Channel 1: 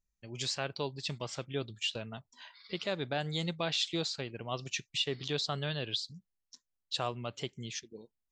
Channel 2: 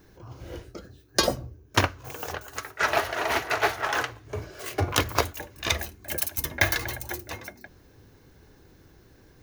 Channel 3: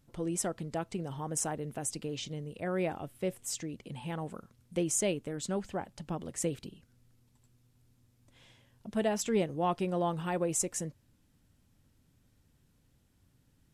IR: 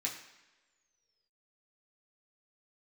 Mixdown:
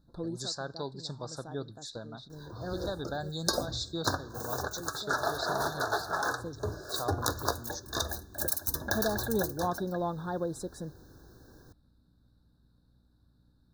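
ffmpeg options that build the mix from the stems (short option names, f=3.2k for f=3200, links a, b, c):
-filter_complex "[0:a]volume=-1.5dB,asplit=3[a][b][c];[b]volume=-18.5dB[d];[1:a]adelay=2300,volume=0dB,asplit=2[e][f];[f]volume=-20.5dB[g];[2:a]aeval=exprs='val(0)+0.000562*(sin(2*PI*60*n/s)+sin(2*PI*2*60*n/s)/2+sin(2*PI*3*60*n/s)/3+sin(2*PI*4*60*n/s)/4+sin(2*PI*5*60*n/s)/5)':c=same,highshelf=f=5.1k:t=q:w=3:g=-9.5,volume=-1.5dB[h];[c]apad=whole_len=605599[i];[h][i]sidechaincompress=threshold=-44dB:ratio=8:attack=39:release=1010[j];[a][e]amix=inputs=2:normalize=0,acompressor=threshold=-27dB:ratio=4,volume=0dB[k];[3:a]atrim=start_sample=2205[l];[d][g]amix=inputs=2:normalize=0[m];[m][l]afir=irnorm=-1:irlink=0[n];[j][k][n]amix=inputs=3:normalize=0,asuperstop=centerf=2500:order=20:qfactor=1.3"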